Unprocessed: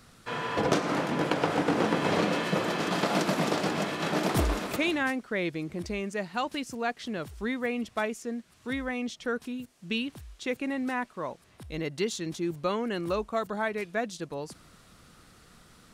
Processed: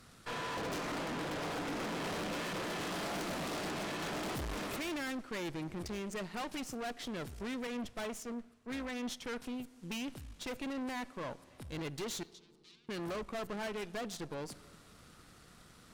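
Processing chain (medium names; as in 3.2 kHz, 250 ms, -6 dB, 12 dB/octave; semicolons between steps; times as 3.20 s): valve stage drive 39 dB, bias 0.8; 12.23–12.89 s: ladder band-pass 4.7 kHz, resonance 35%; on a send at -18 dB: reverberation RT60 2.1 s, pre-delay 3 ms; 7.67–9.22 s: on the sum: three bands expanded up and down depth 100%; trim +2 dB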